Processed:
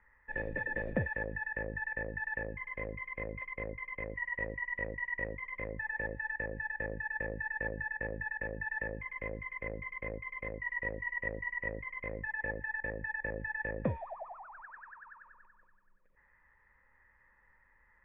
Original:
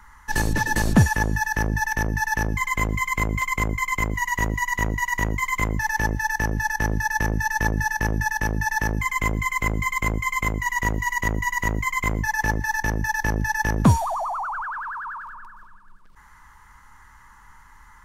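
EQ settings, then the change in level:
formant resonators in series e
0.0 dB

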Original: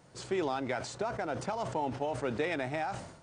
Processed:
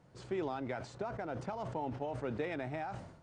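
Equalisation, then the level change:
low-pass filter 2,800 Hz 6 dB per octave
low-shelf EQ 240 Hz +5.5 dB
−6.0 dB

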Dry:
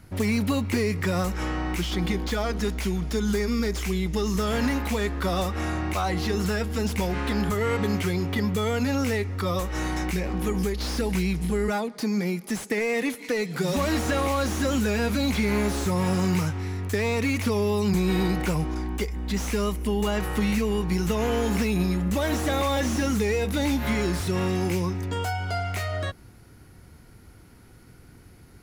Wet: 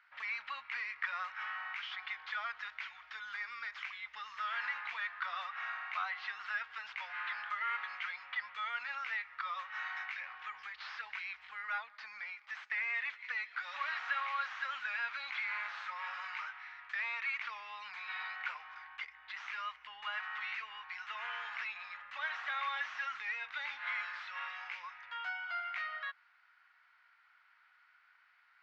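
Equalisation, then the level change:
inverse Chebyshev high-pass filter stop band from 400 Hz, stop band 60 dB
high-frequency loss of the air 180 metres
head-to-tape spacing loss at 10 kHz 39 dB
+6.0 dB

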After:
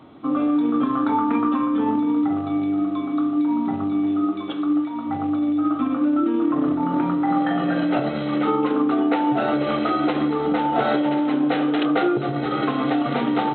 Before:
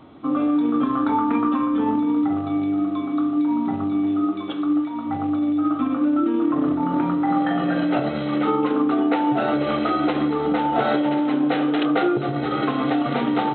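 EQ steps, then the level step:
high-pass filter 79 Hz
0.0 dB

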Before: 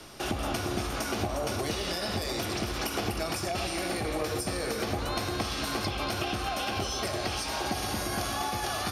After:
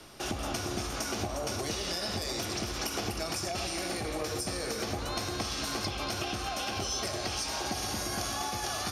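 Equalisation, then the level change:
dynamic equaliser 6,200 Hz, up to +7 dB, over −51 dBFS, Q 1.5
−3.5 dB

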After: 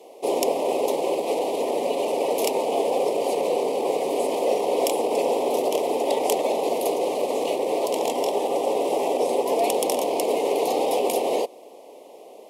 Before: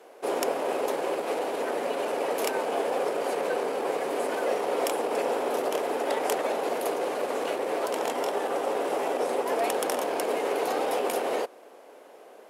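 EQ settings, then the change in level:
Butterworth band-reject 1,500 Hz, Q 0.99
+5.5 dB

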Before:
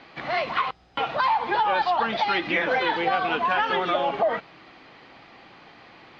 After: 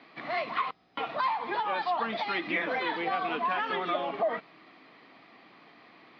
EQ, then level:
loudspeaker in its box 250–5,300 Hz, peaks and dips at 370 Hz −5 dB, 530 Hz −8 dB, 840 Hz −9 dB, 1,500 Hz −7 dB, 2,900 Hz −4 dB
high-shelf EQ 2,400 Hz −8 dB
0.0 dB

